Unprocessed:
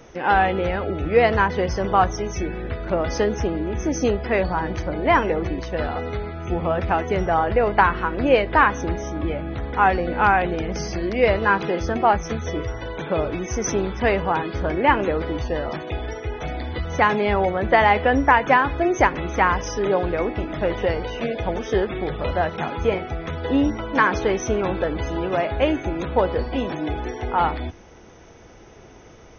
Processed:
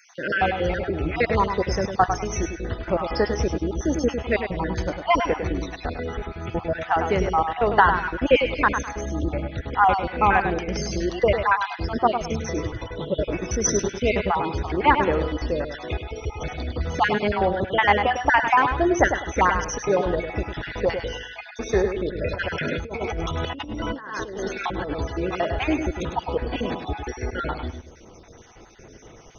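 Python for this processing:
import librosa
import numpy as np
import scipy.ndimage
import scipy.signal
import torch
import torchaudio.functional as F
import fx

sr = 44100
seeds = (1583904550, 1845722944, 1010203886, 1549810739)

y = fx.spec_dropout(x, sr, seeds[0], share_pct=47)
y = fx.echo_feedback(y, sr, ms=102, feedback_pct=27, wet_db=-7.5)
y = fx.over_compress(y, sr, threshold_db=-30.0, ratio=-1.0, at=(22.28, 24.91))
y = fx.high_shelf(y, sr, hz=5800.0, db=10.5)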